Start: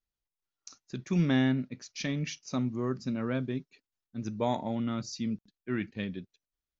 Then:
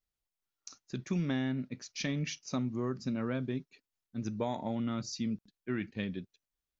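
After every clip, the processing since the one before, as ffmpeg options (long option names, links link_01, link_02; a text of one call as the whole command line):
ffmpeg -i in.wav -af "acompressor=threshold=-29dB:ratio=6" out.wav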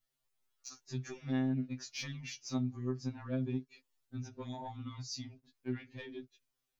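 ffmpeg -i in.wav -af "acompressor=threshold=-46dB:ratio=2.5,asoftclip=type=tanh:threshold=-33.5dB,afftfilt=real='re*2.45*eq(mod(b,6),0)':imag='im*2.45*eq(mod(b,6),0)':win_size=2048:overlap=0.75,volume=7dB" out.wav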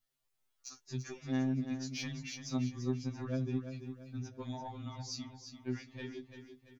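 ffmpeg -i in.wav -af "aecho=1:1:339|678|1017|1356|1695:0.355|0.145|0.0596|0.0245|0.01" out.wav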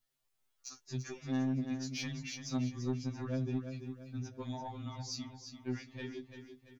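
ffmpeg -i in.wav -af "asoftclip=type=tanh:threshold=-26dB,volume=1dB" out.wav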